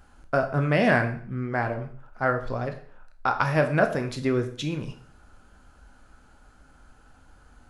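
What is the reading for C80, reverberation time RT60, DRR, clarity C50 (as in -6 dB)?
14.5 dB, 0.45 s, 5.5 dB, 11.0 dB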